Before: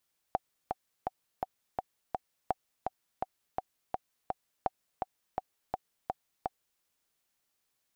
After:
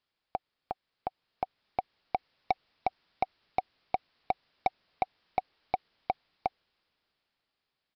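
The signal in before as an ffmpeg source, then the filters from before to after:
-f lavfi -i "aevalsrc='pow(10,(-14.5-4*gte(mod(t,6*60/167),60/167))/20)*sin(2*PI*754*mod(t,60/167))*exp(-6.91*mod(t,60/167)/0.03)':duration=6.46:sample_rate=44100"
-af "dynaudnorm=framelen=260:gausssize=13:maxgain=13dB,aresample=11025,asoftclip=type=tanh:threshold=-17dB,aresample=44100"

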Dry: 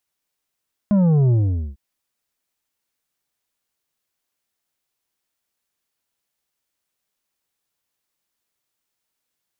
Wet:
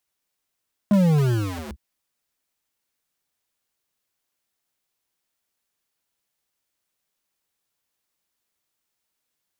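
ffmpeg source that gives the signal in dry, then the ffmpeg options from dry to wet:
-f lavfi -i "aevalsrc='0.211*clip((0.85-t)/0.45,0,1)*tanh(2.37*sin(2*PI*210*0.85/log(65/210)*(exp(log(65/210)*t/0.85)-1)))/tanh(2.37)':duration=0.85:sample_rate=44100"
-filter_complex "[0:a]acrossover=split=120[link_01][link_02];[link_01]aeval=exprs='(mod(37.6*val(0)+1,2)-1)/37.6':channel_layout=same[link_03];[link_03][link_02]amix=inputs=2:normalize=0"

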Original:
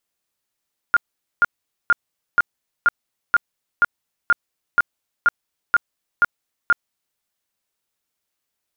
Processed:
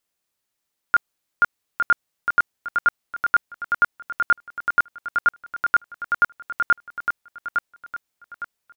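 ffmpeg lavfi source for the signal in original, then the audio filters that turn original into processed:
-f lavfi -i "aevalsrc='0.316*sin(2*PI*1410*mod(t,0.48))*lt(mod(t,0.48),37/1410)':duration=6.24:sample_rate=44100"
-af "aecho=1:1:859|1718|2577|3436:0.531|0.186|0.065|0.0228"

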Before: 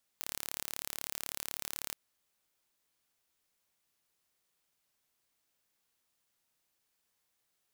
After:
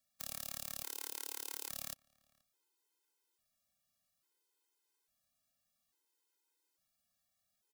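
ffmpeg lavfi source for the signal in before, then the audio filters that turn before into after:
-f lavfi -i "aevalsrc='0.299*eq(mod(n,1222),0)':duration=1.74:sample_rate=44100"
-filter_complex "[0:a]acrossover=split=200|910|2100[link_01][link_02][link_03][link_04];[link_03]acrusher=samples=12:mix=1:aa=0.000001[link_05];[link_01][link_02][link_05][link_04]amix=inputs=4:normalize=0,asplit=2[link_06][link_07];[link_07]adelay=478.1,volume=-26dB,highshelf=frequency=4000:gain=-10.8[link_08];[link_06][link_08]amix=inputs=2:normalize=0,afftfilt=real='re*gt(sin(2*PI*0.59*pts/sr)*(1-2*mod(floor(b*sr/1024/270),2)),0)':imag='im*gt(sin(2*PI*0.59*pts/sr)*(1-2*mod(floor(b*sr/1024/270),2)),0)':win_size=1024:overlap=0.75"

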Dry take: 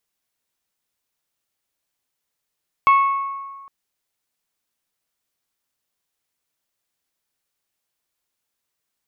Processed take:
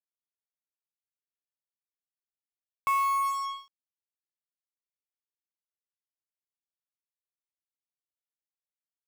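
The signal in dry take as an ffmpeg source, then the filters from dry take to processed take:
-f lavfi -i "aevalsrc='0.355*pow(10,-3*t/1.57)*sin(2*PI*1100*t)+0.106*pow(10,-3*t/0.966)*sin(2*PI*2200*t)+0.0316*pow(10,-3*t/0.851)*sin(2*PI*2640*t)+0.00944*pow(10,-3*t/0.728)*sin(2*PI*3300*t)+0.00282*pow(10,-3*t/0.595)*sin(2*PI*4400*t)':duration=0.81:sample_rate=44100"
-af "equalizer=frequency=290:width_type=o:width=0.59:gain=-7.5,areverse,acompressor=threshold=-25dB:ratio=6,areverse,acrusher=bits=5:mix=0:aa=0.5"

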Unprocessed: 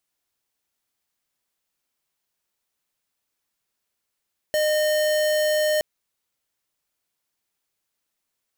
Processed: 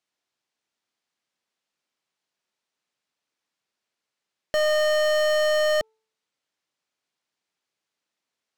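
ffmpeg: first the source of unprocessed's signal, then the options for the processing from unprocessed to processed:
-f lavfi -i "aevalsrc='0.0891*(2*lt(mod(611*t,1),0.5)-1)':duration=1.27:sample_rate=44100"
-af "highpass=150,lowpass=5800,bandreject=frequency=439.9:width_type=h:width=4,bandreject=frequency=879.8:width_type=h:width=4,bandreject=frequency=1319.7:width_type=h:width=4,aeval=exprs='0.168*(cos(1*acos(clip(val(0)/0.168,-1,1)))-cos(1*PI/2))+0.00531*(cos(6*acos(clip(val(0)/0.168,-1,1)))-cos(6*PI/2))+0.0237*(cos(8*acos(clip(val(0)/0.168,-1,1)))-cos(8*PI/2))':channel_layout=same"

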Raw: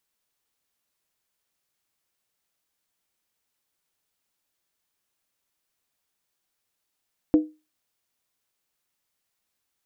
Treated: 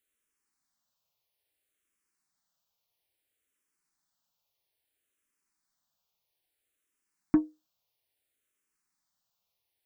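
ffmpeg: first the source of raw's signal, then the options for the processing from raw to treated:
-f lavfi -i "aevalsrc='0.299*pow(10,-3*t/0.27)*sin(2*PI*308*t)+0.075*pow(10,-3*t/0.214)*sin(2*PI*491*t)+0.0188*pow(10,-3*t/0.185)*sin(2*PI*657.9*t)+0.00473*pow(10,-3*t/0.178)*sin(2*PI*707.2*t)+0.00119*pow(10,-3*t/0.166)*sin(2*PI*817.1*t)':duration=0.63:sample_rate=44100"
-filter_complex "[0:a]aeval=exprs='0.376*(cos(1*acos(clip(val(0)/0.376,-1,1)))-cos(1*PI/2))+0.0376*(cos(5*acos(clip(val(0)/0.376,-1,1)))-cos(5*PI/2))+0.0299*(cos(7*acos(clip(val(0)/0.376,-1,1)))-cos(7*PI/2))':channel_layout=same,asplit=2[link_01][link_02];[link_02]afreqshift=-0.6[link_03];[link_01][link_03]amix=inputs=2:normalize=1"

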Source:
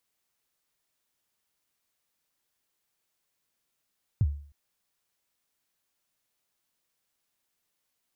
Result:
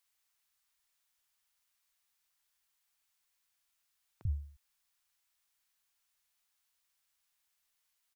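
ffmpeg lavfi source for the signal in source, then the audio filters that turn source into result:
-f lavfi -i "aevalsrc='0.141*pow(10,-3*t/0.48)*sin(2*PI*(130*0.045/log(72/130)*(exp(log(72/130)*min(t,0.045)/0.045)-1)+72*max(t-0.045,0)))':duration=0.31:sample_rate=44100"
-filter_complex "[0:a]equalizer=frequency=125:width_type=o:width=1:gain=-11,equalizer=frequency=250:width_type=o:width=1:gain=-11,equalizer=frequency=500:width_type=o:width=1:gain=-10,acrossover=split=280[link_01][link_02];[link_01]adelay=40[link_03];[link_03][link_02]amix=inputs=2:normalize=0"

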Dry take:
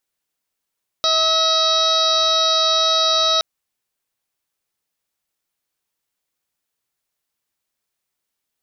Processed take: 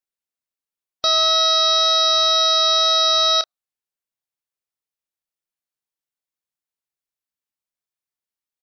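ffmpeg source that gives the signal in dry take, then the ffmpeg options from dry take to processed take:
-f lavfi -i "aevalsrc='0.0794*sin(2*PI*643*t)+0.0891*sin(2*PI*1286*t)+0.0126*sin(2*PI*1929*t)+0.0141*sin(2*PI*2572*t)+0.0211*sin(2*PI*3215*t)+0.141*sin(2*PI*3858*t)+0.0562*sin(2*PI*4501*t)+0.0562*sin(2*PI*5144*t)+0.0316*sin(2*PI*5787*t)':duration=2.37:sample_rate=44100"
-filter_complex "[0:a]afftdn=noise_reduction=13:noise_floor=-38,asplit=2[link_01][link_02];[link_02]adelay=29,volume=-12dB[link_03];[link_01][link_03]amix=inputs=2:normalize=0"

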